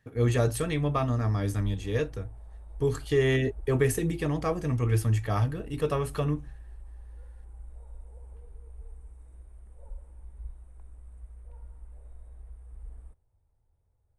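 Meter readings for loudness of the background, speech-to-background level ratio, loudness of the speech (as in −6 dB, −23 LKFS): −47.5 LKFS, 19.5 dB, −28.0 LKFS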